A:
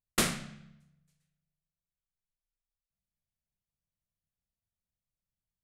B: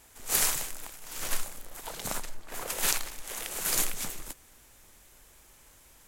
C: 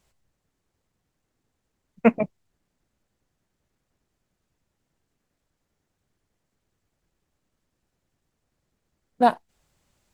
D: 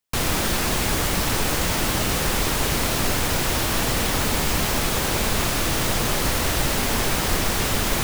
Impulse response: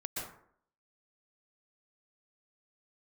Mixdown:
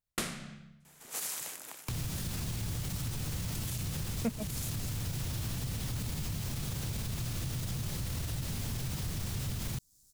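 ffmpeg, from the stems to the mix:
-filter_complex "[0:a]volume=1.5dB[link_01];[1:a]highpass=160,adelay=850,volume=-2.5dB[link_02];[2:a]bass=frequency=250:gain=13,treble=frequency=4000:gain=6,aexciter=amount=10.7:drive=7:freq=4000,adelay=2200,volume=-8.5dB[link_03];[3:a]equalizer=frequency=120:width_type=o:width=1.5:gain=14.5,adelay=1750,volume=-7dB[link_04];[link_02][link_04]amix=inputs=2:normalize=0,acrossover=split=190|3000[link_05][link_06][link_07];[link_06]acompressor=threshold=-38dB:ratio=5[link_08];[link_05][link_08][link_07]amix=inputs=3:normalize=0,alimiter=limit=-20.5dB:level=0:latency=1:release=34,volume=0dB[link_09];[link_01][link_03][link_09]amix=inputs=3:normalize=0,acompressor=threshold=-36dB:ratio=2.5"

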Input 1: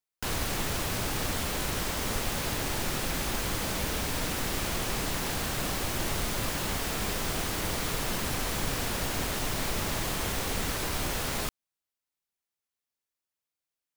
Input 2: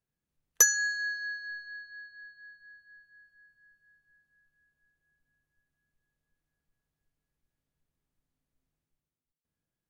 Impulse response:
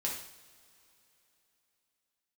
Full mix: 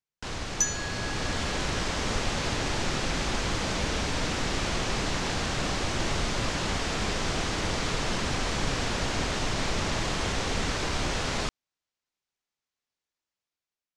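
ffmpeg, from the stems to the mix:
-filter_complex "[0:a]volume=-3.5dB[link_01];[1:a]crystalizer=i=3.5:c=0,volume=-15dB[link_02];[link_01][link_02]amix=inputs=2:normalize=0,lowpass=frequency=7000:width=0.5412,lowpass=frequency=7000:width=1.3066,dynaudnorm=framelen=740:gausssize=3:maxgain=6.5dB"

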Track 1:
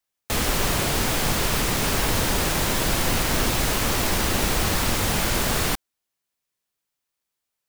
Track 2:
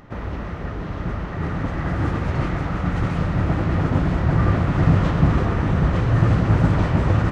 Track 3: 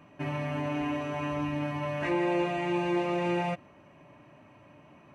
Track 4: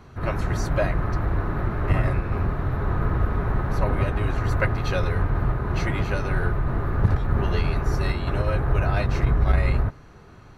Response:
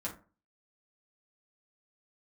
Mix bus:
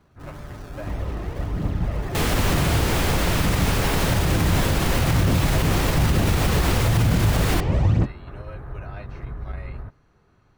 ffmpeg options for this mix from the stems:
-filter_complex "[0:a]bass=frequency=250:gain=0,treble=frequency=4000:gain=-5,adelay=1850,volume=1dB[link_01];[1:a]equalizer=frequency=1400:width=1.6:gain=-11.5,aphaser=in_gain=1:out_gain=1:delay=2.9:decay=0.54:speed=1.1:type=triangular,adelay=750,volume=-1.5dB[link_02];[2:a]acrusher=samples=30:mix=1:aa=0.000001:lfo=1:lforange=30:lforate=1.8,volume=-11.5dB[link_03];[3:a]acrossover=split=3500[link_04][link_05];[link_05]acompressor=threshold=-52dB:ratio=4:attack=1:release=60[link_06];[link_04][link_06]amix=inputs=2:normalize=0,volume=-13dB[link_07];[link_01][link_02][link_03][link_07]amix=inputs=4:normalize=0,alimiter=limit=-10.5dB:level=0:latency=1:release=48"

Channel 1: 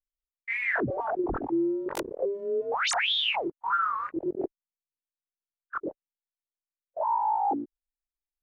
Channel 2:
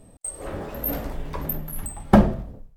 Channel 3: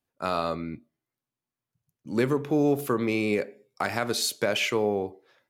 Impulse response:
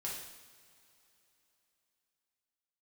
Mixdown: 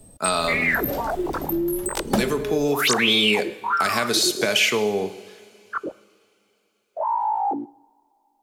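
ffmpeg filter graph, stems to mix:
-filter_complex "[0:a]volume=2dB,asplit=2[link_01][link_02];[link_02]volume=-19.5dB[link_03];[1:a]equalizer=frequency=2000:width_type=o:width=2.1:gain=-7.5,volume=0dB[link_04];[2:a]aecho=1:1:4.7:0.39,volume=2dB,asplit=2[link_05][link_06];[link_06]volume=-9dB[link_07];[3:a]atrim=start_sample=2205[link_08];[link_03][link_07]amix=inputs=2:normalize=0[link_09];[link_09][link_08]afir=irnorm=-1:irlink=0[link_10];[link_01][link_04][link_05][link_10]amix=inputs=4:normalize=0,highshelf=frequency=2000:gain=10,acrossover=split=150|2500|7400[link_11][link_12][link_13][link_14];[link_11]acompressor=threshold=-37dB:ratio=4[link_15];[link_12]acompressor=threshold=-19dB:ratio=4[link_16];[link_13]acompressor=threshold=-21dB:ratio=4[link_17];[link_14]acompressor=threshold=-32dB:ratio=4[link_18];[link_15][link_16][link_17][link_18]amix=inputs=4:normalize=0"

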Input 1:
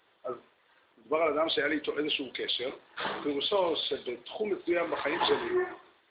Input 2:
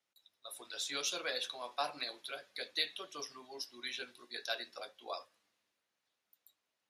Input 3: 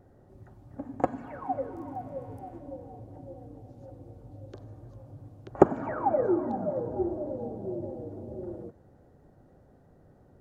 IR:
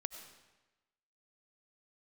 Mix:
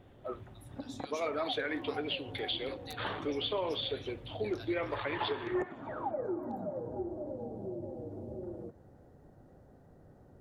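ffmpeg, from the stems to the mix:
-filter_complex "[0:a]volume=-3.5dB[link_01];[1:a]aeval=exprs='(mod(10.6*val(0)+1,2)-1)/10.6':channel_layout=same,adelay=100,volume=-13.5dB[link_02];[2:a]acompressor=threshold=-41dB:ratio=2,volume=0dB[link_03];[link_01][link_03]amix=inputs=2:normalize=0,alimiter=limit=-24dB:level=0:latency=1:release=213,volume=0dB[link_04];[link_02][link_04]amix=inputs=2:normalize=0"

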